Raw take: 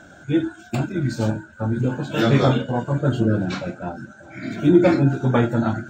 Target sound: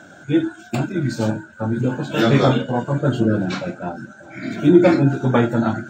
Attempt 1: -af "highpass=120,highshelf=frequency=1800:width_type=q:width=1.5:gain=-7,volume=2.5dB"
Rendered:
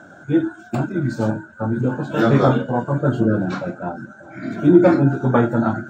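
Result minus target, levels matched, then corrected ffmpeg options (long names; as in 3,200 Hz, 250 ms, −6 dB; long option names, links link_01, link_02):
4,000 Hz band −8.5 dB
-af "highpass=120,volume=2.5dB"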